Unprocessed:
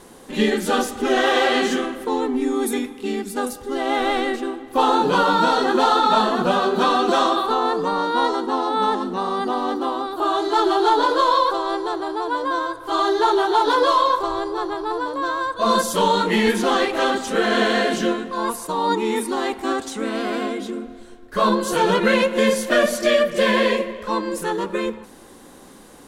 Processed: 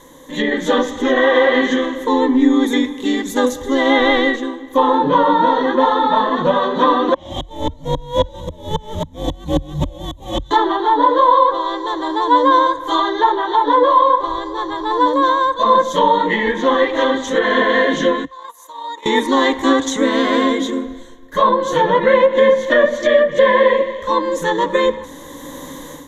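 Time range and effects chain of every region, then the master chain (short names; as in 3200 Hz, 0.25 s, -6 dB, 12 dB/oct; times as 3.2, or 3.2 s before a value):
7.14–10.51 CVSD 64 kbps + frequency shift -440 Hz + dB-ramp tremolo swelling 3.7 Hz, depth 35 dB
18.25–19.06 gate -22 dBFS, range -16 dB + HPF 720 Hz + compressor 3:1, threshold -43 dBFS
whole clip: treble ducked by the level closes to 2100 Hz, closed at -14 dBFS; ripple EQ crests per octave 1.1, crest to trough 14 dB; AGC; gain -1 dB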